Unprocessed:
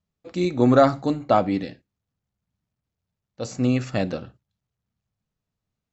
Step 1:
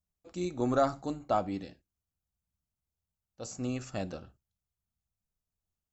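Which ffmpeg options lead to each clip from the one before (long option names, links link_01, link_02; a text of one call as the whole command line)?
ffmpeg -i in.wav -af "equalizer=frequency=125:width_type=o:width=1:gain=-12,equalizer=frequency=250:width_type=o:width=1:gain=-9,equalizer=frequency=500:width_type=o:width=1:gain=-9,equalizer=frequency=1000:width_type=o:width=1:gain=-5,equalizer=frequency=2000:width_type=o:width=1:gain=-12,equalizer=frequency=4000:width_type=o:width=1:gain=-9" out.wav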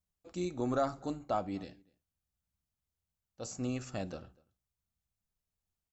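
ffmpeg -i in.wav -filter_complex "[0:a]asplit=2[link_01][link_02];[link_02]alimiter=level_in=2.5dB:limit=-24dB:level=0:latency=1:release=380,volume=-2.5dB,volume=1.5dB[link_03];[link_01][link_03]amix=inputs=2:normalize=0,asplit=2[link_04][link_05];[link_05]adelay=244.9,volume=-26dB,highshelf=frequency=4000:gain=-5.51[link_06];[link_04][link_06]amix=inputs=2:normalize=0,volume=-7.5dB" out.wav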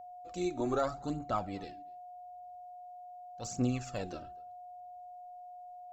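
ffmpeg -i in.wav -af "aphaser=in_gain=1:out_gain=1:delay=3.3:decay=0.57:speed=0.83:type=triangular,aeval=exprs='val(0)+0.00501*sin(2*PI*720*n/s)':channel_layout=same" out.wav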